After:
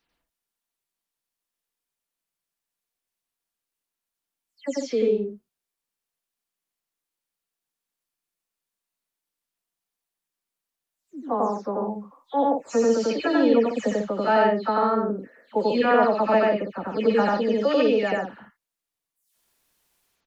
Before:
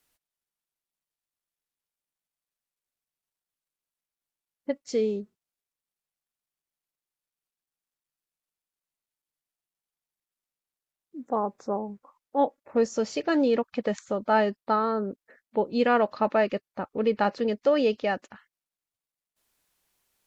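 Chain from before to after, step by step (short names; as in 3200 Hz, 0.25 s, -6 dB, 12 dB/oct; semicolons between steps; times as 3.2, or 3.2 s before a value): spectral delay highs early, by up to 0.201 s; loudspeakers at several distances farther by 31 m 0 dB, 49 m -6 dB; gain +1 dB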